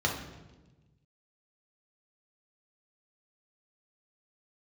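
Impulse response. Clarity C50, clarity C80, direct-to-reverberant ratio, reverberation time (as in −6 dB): 5.5 dB, 8.5 dB, −1.0 dB, 1.2 s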